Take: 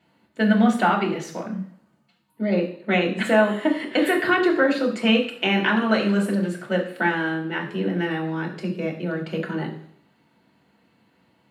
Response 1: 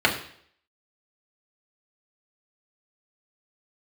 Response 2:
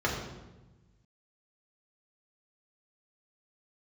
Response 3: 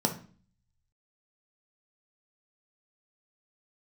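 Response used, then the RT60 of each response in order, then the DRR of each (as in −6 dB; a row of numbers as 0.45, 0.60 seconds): 1; 0.60, 1.1, 0.40 seconds; −2.0, −4.0, 3.0 decibels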